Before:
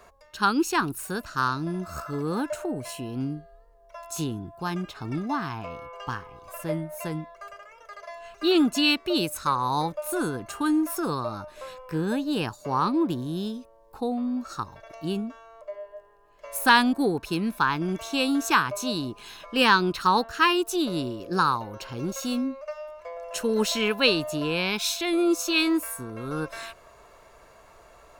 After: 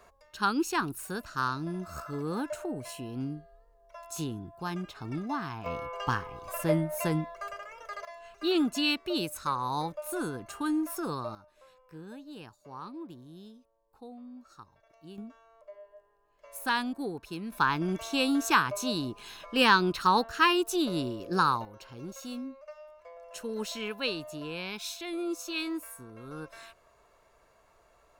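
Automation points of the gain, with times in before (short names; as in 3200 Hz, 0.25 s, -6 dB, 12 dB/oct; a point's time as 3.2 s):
-5 dB
from 5.66 s +3 dB
from 8.05 s -6 dB
from 11.35 s -18.5 dB
from 15.18 s -11 dB
from 17.52 s -2.5 dB
from 21.65 s -11 dB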